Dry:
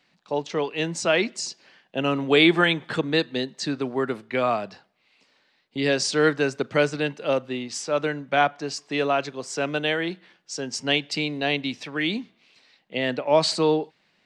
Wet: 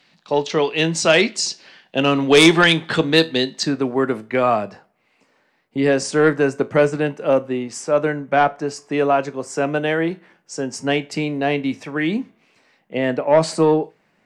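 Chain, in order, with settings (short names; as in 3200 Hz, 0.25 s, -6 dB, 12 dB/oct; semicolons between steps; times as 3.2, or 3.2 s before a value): bell 3900 Hz +3 dB 1.3 oct, from 3.63 s -9 dB, from 4.63 s -15 dB; sine folder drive 6 dB, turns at -3 dBFS; resonator 54 Hz, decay 0.23 s, harmonics all, mix 50%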